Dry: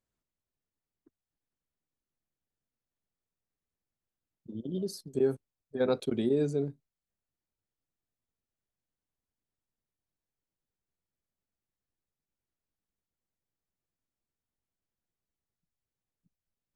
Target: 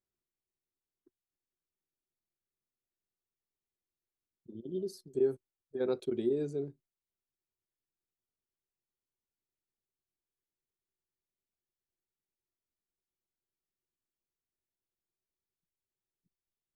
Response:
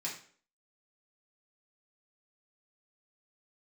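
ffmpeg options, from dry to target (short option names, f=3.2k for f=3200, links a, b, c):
-af "equalizer=f=370:w=5.2:g=11.5,volume=-8.5dB"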